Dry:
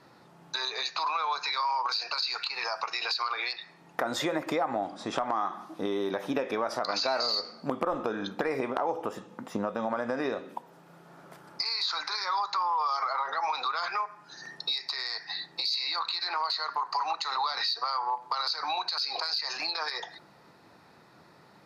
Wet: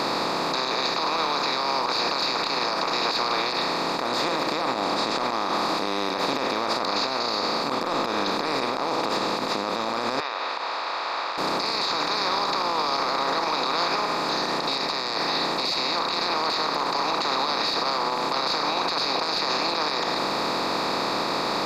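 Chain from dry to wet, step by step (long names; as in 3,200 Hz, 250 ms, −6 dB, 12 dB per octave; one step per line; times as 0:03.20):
compressor on every frequency bin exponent 0.2
brickwall limiter −11.5 dBFS, peak gain reduction 11 dB
0:10.20–0:11.38: band-pass filter 790–4,000 Hz
level −3 dB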